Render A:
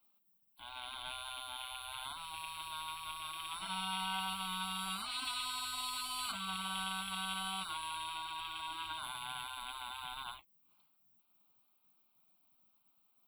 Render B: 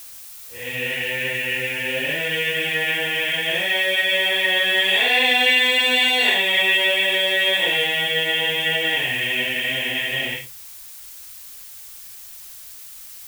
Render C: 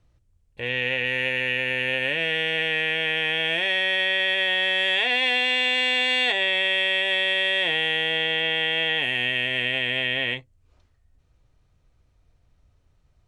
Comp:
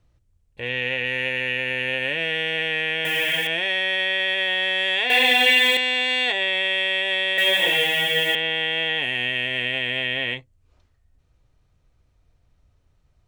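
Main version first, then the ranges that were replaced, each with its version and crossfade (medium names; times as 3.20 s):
C
3.05–3.47 s: from B
5.10–5.77 s: from B
7.38–8.35 s: from B
not used: A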